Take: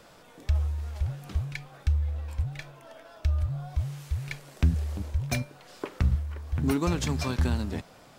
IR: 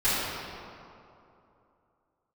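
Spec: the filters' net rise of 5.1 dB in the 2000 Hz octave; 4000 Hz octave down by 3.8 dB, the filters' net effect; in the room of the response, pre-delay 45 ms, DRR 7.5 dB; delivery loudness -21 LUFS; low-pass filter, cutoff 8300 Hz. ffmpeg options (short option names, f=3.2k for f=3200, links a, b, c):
-filter_complex "[0:a]lowpass=8.3k,equalizer=f=2k:t=o:g=8.5,equalizer=f=4k:t=o:g=-7.5,asplit=2[a][b];[1:a]atrim=start_sample=2205,adelay=45[c];[b][c]afir=irnorm=-1:irlink=0,volume=-22.5dB[d];[a][d]amix=inputs=2:normalize=0,volume=9dB"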